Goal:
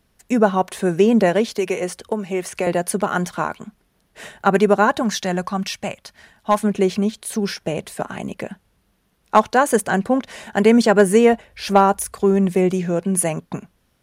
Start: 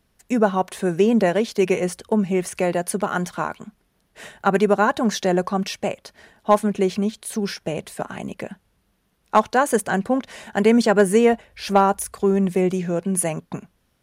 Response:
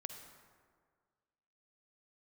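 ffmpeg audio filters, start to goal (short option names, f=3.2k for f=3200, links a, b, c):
-filter_complex "[0:a]asettb=1/sr,asplit=3[a][b][c];[a]atrim=end=1.494[d];[b]atrim=start=1.49:end=2.67,asetpts=PTS-STARTPTS,afade=t=in:d=0.004:c=qsin,afade=t=out:st=1.176:d=0.004:c=qsin,acrossover=split=330|6300[e][f][g];[e]acompressor=threshold=-34dB:ratio=4[h];[f]acompressor=threshold=-22dB:ratio=4[i];[g]acompressor=threshold=-37dB:ratio=4[j];[h][i][j]amix=inputs=3:normalize=0[k];[c]atrim=start=2.666[l];[d][k]acrossfade=d=0.004:c1=hsin:c2=qsin[m];[m][l]acrossfade=d=0.004:c1=qsin:c2=hsin,asettb=1/sr,asplit=3[n][o][p];[n]atrim=end=5.024[q];[o]atrim=start=5.02:end=6.62,asetpts=PTS-STARTPTS,afade=t=in:d=0.004:c=qsin,afade=t=out:st=1.596:d=0.004:c=qsin,equalizer=f=420:w=0.96:g=-9[r];[p]atrim=start=6.616[s];[q][r]acrossfade=d=0.004:c1=hsin:c2=qsin[t];[t][s]acrossfade=d=0.004:c1=qsin:c2=hsin,volume=2.5dB"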